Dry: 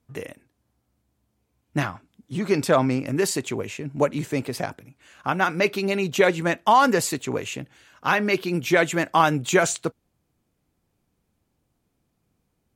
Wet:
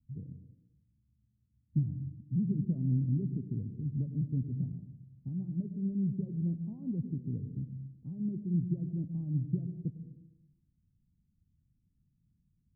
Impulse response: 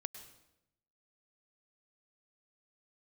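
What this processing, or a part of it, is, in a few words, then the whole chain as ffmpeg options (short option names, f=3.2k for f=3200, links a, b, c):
club heard from the street: -filter_complex "[0:a]alimiter=limit=-12.5dB:level=0:latency=1:release=265,lowpass=f=190:w=0.5412,lowpass=f=190:w=1.3066[a];[1:a]atrim=start_sample=2205[b];[a][b]afir=irnorm=-1:irlink=0,volume=4dB"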